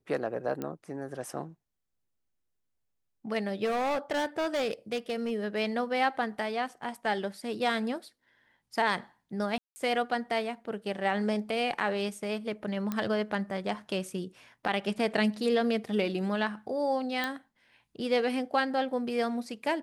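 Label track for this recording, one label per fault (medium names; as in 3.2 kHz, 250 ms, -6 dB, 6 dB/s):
0.620000	0.620000	pop -21 dBFS
3.640000	5.320000	clipped -26.5 dBFS
9.580000	9.760000	dropout 180 ms
12.920000	12.920000	pop -18 dBFS
17.240000	17.240000	pop -17 dBFS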